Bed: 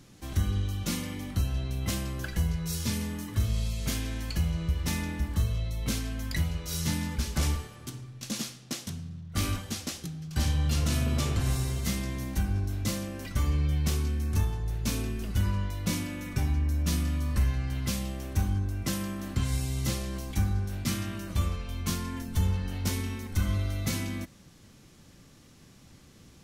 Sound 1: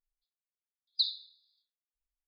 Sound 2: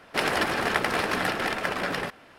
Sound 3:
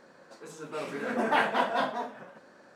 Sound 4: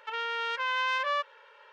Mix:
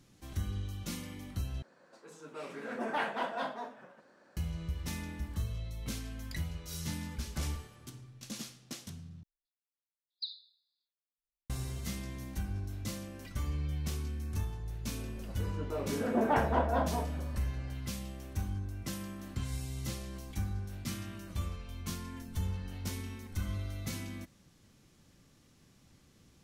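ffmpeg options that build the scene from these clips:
ffmpeg -i bed.wav -i cue0.wav -i cue1.wav -i cue2.wav -filter_complex "[3:a]asplit=2[link_01][link_02];[0:a]volume=-8.5dB[link_03];[link_01]asoftclip=type=tanh:threshold=-13.5dB[link_04];[link_02]tiltshelf=frequency=1400:gain=10[link_05];[link_03]asplit=3[link_06][link_07][link_08];[link_06]atrim=end=1.624[link_09];[link_04]atrim=end=2.75,asetpts=PTS-STARTPTS,volume=-7.5dB[link_10];[link_07]atrim=start=4.366:end=9.234[link_11];[1:a]atrim=end=2.27,asetpts=PTS-STARTPTS,volume=-10.5dB[link_12];[link_08]atrim=start=11.496[link_13];[link_05]atrim=end=2.75,asetpts=PTS-STARTPTS,volume=-7.5dB,afade=type=in:duration=0.004:curve=hsin,afade=type=out:start_time=2.746:duration=0.004:curve=hsin,adelay=14980[link_14];[link_09][link_10]acrossfade=duration=0.004:curve1=hsin:curve2=hsin[link_15];[link_15][link_11]acrossfade=duration=0.004:curve1=hsin:curve2=hsin[link_16];[link_16][link_12]acrossfade=duration=0.004:curve1=hsin:curve2=hsin[link_17];[link_17][link_13]acrossfade=duration=0.004:curve1=hsin:curve2=hsin[link_18];[link_18][link_14]amix=inputs=2:normalize=0" out.wav

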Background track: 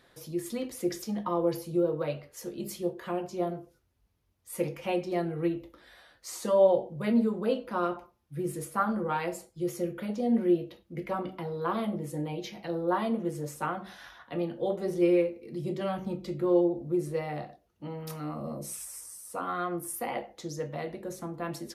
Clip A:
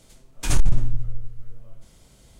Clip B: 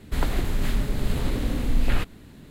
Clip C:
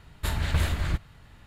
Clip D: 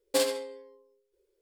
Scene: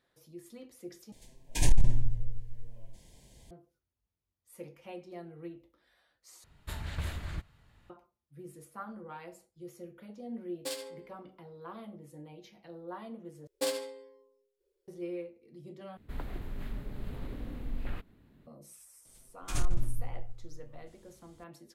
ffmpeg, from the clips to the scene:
ffmpeg -i bed.wav -i cue0.wav -i cue1.wav -i cue2.wav -i cue3.wav -filter_complex "[1:a]asplit=2[link_01][link_02];[4:a]asplit=2[link_03][link_04];[0:a]volume=-15dB[link_05];[link_01]asuperstop=centerf=1300:order=20:qfactor=2.6[link_06];[link_03]acrossover=split=1800[link_07][link_08];[link_07]aeval=exprs='val(0)*(1-0.5/2+0.5/2*cos(2*PI*2.2*n/s))':channel_layout=same[link_09];[link_08]aeval=exprs='val(0)*(1-0.5/2-0.5/2*cos(2*PI*2.2*n/s))':channel_layout=same[link_10];[link_09][link_10]amix=inputs=2:normalize=0[link_11];[2:a]equalizer=frequency=7200:width_type=o:width=1.9:gain=-11.5[link_12];[link_05]asplit=5[link_13][link_14][link_15][link_16][link_17];[link_13]atrim=end=1.124[link_18];[link_06]atrim=end=2.39,asetpts=PTS-STARTPTS,volume=-4.5dB[link_19];[link_14]atrim=start=3.506:end=6.444[link_20];[3:a]atrim=end=1.46,asetpts=PTS-STARTPTS,volume=-11dB[link_21];[link_15]atrim=start=7.896:end=13.474[link_22];[link_04]atrim=end=1.41,asetpts=PTS-STARTPTS,volume=-6dB[link_23];[link_16]atrim=start=14.876:end=15.974[link_24];[link_12]atrim=end=2.5,asetpts=PTS-STARTPTS,volume=-14.5dB[link_25];[link_17]atrim=start=18.466[link_26];[link_11]atrim=end=1.41,asetpts=PTS-STARTPTS,volume=-8.5dB,afade=type=in:duration=0.004:curve=hsin,afade=type=out:start_time=1.406:duration=0.004:curve=hsin,adelay=10510[link_27];[link_02]atrim=end=2.39,asetpts=PTS-STARTPTS,volume=-11dB,afade=type=in:duration=0.004:curve=hsin,afade=type=out:start_time=2.386:duration=0.004:curve=hsin,adelay=19050[link_28];[link_18][link_19]acrossfade=duration=0.004:curve1=hsin:curve2=hsin[link_29];[link_29][link_20]acrossfade=duration=0.004:curve1=hsin:curve2=hsin[link_30];[link_30][link_21]acrossfade=duration=0.004:curve1=hsin:curve2=hsin[link_31];[link_31][link_22]acrossfade=duration=0.004:curve1=hsin:curve2=hsin[link_32];[link_32][link_23]acrossfade=duration=0.004:curve1=hsin:curve2=hsin[link_33];[link_33][link_24]acrossfade=duration=0.004:curve1=hsin:curve2=hsin[link_34];[link_34][link_25]acrossfade=duration=0.004:curve1=hsin:curve2=hsin[link_35];[link_35][link_26]acrossfade=duration=0.004:curve1=hsin:curve2=hsin[link_36];[link_36][link_27][link_28]amix=inputs=3:normalize=0" out.wav

